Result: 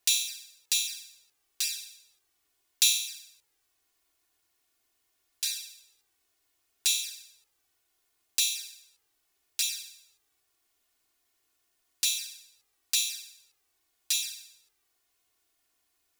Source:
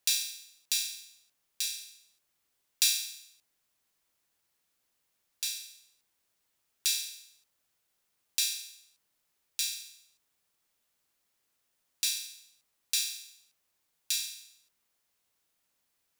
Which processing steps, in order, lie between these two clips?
flanger swept by the level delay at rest 2.8 ms, full sweep at −28 dBFS
level +6 dB

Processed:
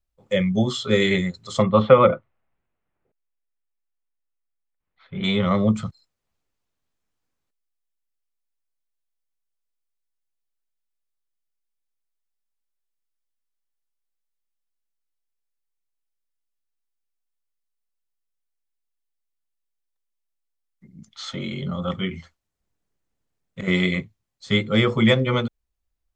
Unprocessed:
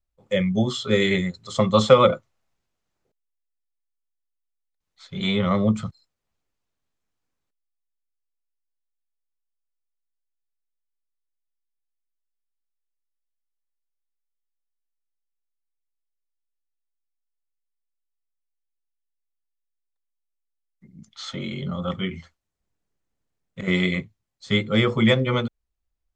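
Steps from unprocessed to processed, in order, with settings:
0:01.62–0:05.24: low-pass filter 2,600 Hz 24 dB per octave
level +1 dB

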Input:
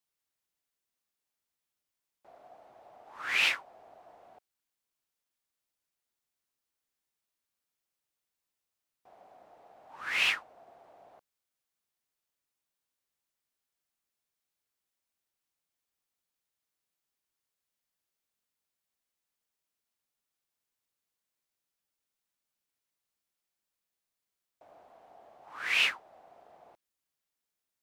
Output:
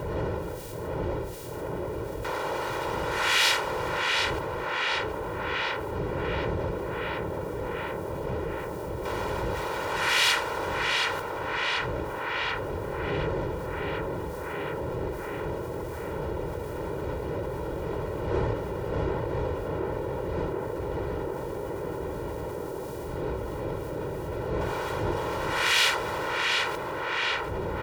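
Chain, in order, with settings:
ceiling on every frequency bin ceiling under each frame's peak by 18 dB
wind on the microphone 450 Hz −55 dBFS
high-pass filter 45 Hz
comb filter 2.1 ms, depth 75%
on a send: tape delay 732 ms, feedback 64%, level −9 dB, low-pass 2,900 Hz
on the sum: envelope flattener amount 70%
level +1 dB

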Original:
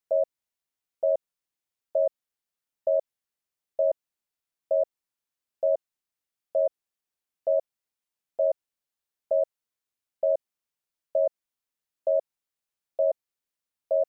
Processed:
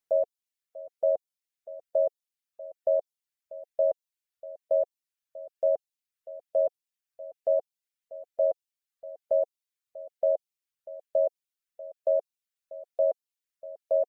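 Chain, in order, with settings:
slap from a distant wall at 110 metres, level −17 dB
reverb reduction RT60 0.75 s

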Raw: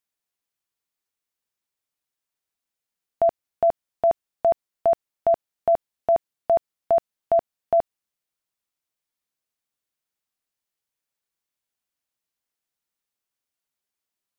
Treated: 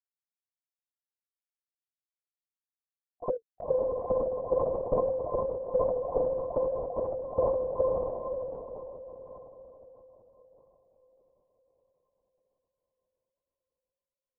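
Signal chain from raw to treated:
low-pass that shuts in the quiet parts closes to 820 Hz, open at −19.5 dBFS
noise gate −22 dBFS, range −54 dB
low-shelf EQ 72 Hz +2.5 dB
output level in coarse steps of 19 dB
phase-vocoder pitch shift with formants kept +7.5 semitones
envelope filter 390–1,200 Hz, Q 15, up, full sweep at −5.5 dBFS
on a send: feedback delay with all-pass diffusion 526 ms, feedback 49%, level −3.5 dB
on the sum: linear-prediction vocoder at 8 kHz whisper
level that may fall only so fast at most 32 dB per second
level +5 dB

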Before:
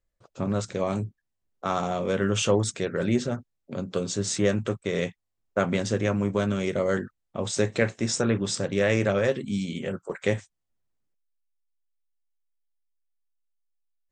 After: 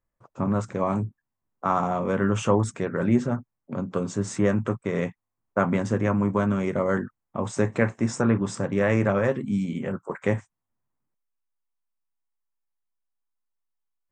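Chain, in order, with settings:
octave-band graphic EQ 125/250/1,000/2,000/4,000 Hz +7/+7/+12/+3/−10 dB
level −4.5 dB

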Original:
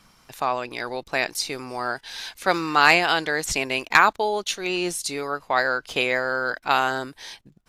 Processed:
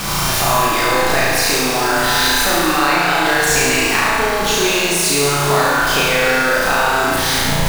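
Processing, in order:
converter with a step at zero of −20 dBFS
downward compressor, threshold −20 dBFS, peak gain reduction 11 dB
flutter between parallel walls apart 6 metres, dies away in 1.2 s
convolution reverb RT60 2.5 s, pre-delay 33 ms, DRR 0.5 dB
level +1.5 dB

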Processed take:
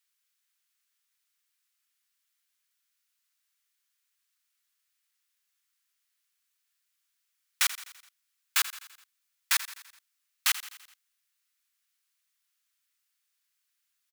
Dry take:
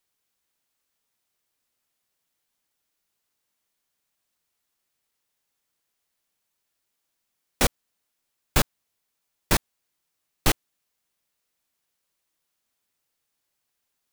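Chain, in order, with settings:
high-pass filter 1,300 Hz 24 dB per octave
on a send: repeating echo 84 ms, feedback 56%, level −15 dB

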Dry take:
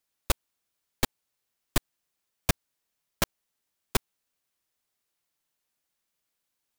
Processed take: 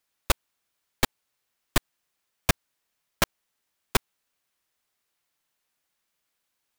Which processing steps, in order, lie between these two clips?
parametric band 1,600 Hz +4 dB 2.7 octaves
level +1.5 dB

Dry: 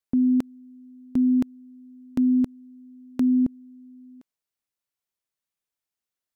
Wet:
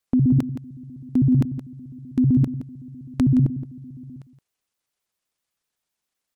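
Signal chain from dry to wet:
pitch shifter gated in a rhythm −11 semitones, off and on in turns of 64 ms
in parallel at +2 dB: downward compressor, threshold −31 dBFS, peak gain reduction 12 dB
on the sum: single-tap delay 170 ms −12.5 dB

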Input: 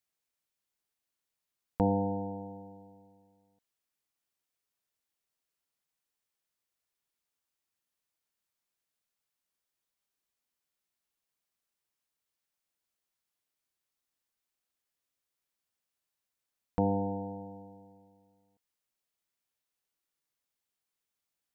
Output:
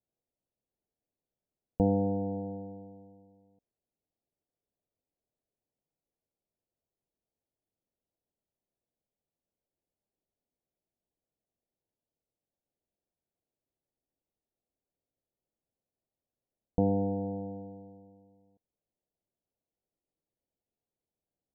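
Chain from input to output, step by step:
in parallel at +1 dB: downward compressor, threshold −37 dBFS, peak gain reduction 14 dB
on the sum: inverse Chebyshev low-pass filter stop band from 1,400 Hz, stop band 40 dB

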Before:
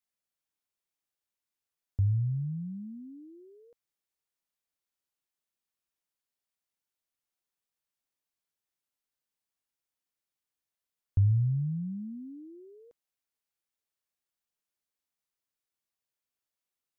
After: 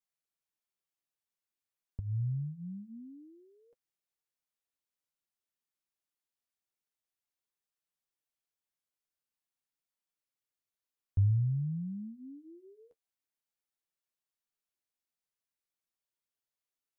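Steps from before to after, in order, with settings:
flanger 0.5 Hz, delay 4.9 ms, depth 7.7 ms, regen −26%
level −1 dB

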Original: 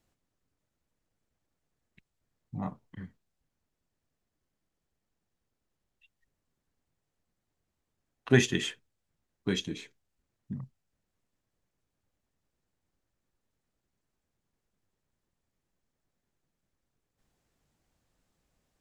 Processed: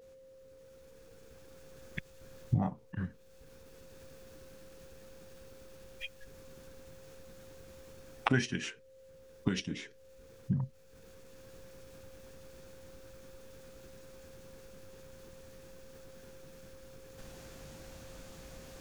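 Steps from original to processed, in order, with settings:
camcorder AGC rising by 16 dB per second
steady tone 530 Hz −49 dBFS
in parallel at 0 dB: downward compressor, threshold −47 dBFS, peak gain reduction 29 dB
on the sum: formants moved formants −2 semitones
level −8 dB

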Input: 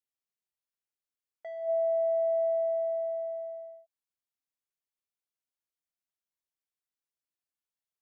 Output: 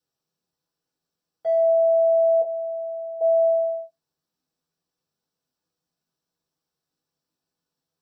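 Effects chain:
0:02.41–0:03.21: elliptic low-pass filter 520 Hz, stop band 40 dB
brickwall limiter −34.5 dBFS, peak gain reduction 10.5 dB
convolution reverb RT60 0.20 s, pre-delay 3 ms, DRR −5.5 dB
level +2 dB

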